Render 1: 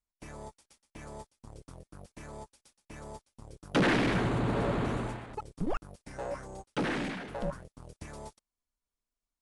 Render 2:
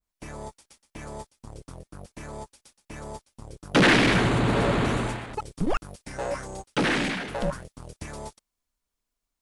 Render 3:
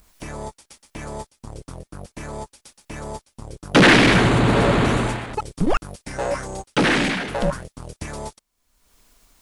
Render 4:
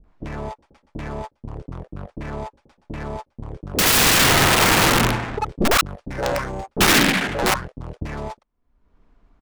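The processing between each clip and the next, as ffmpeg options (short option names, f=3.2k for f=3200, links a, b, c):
-af "adynamicequalizer=threshold=0.00398:dfrequency=1600:dqfactor=0.7:tfrequency=1600:tqfactor=0.7:attack=5:release=100:ratio=0.375:range=3:mode=boostabove:tftype=highshelf,volume=6.5dB"
-af "acompressor=mode=upward:threshold=-43dB:ratio=2.5,volume=6dB"
-filter_complex "[0:a]adynamicsmooth=sensitivity=4.5:basefreq=1.1k,aeval=exprs='(mod(5.01*val(0)+1,2)-1)/5.01':c=same,acrossover=split=570[a][b];[b]adelay=40[c];[a][c]amix=inputs=2:normalize=0,volume=4dB"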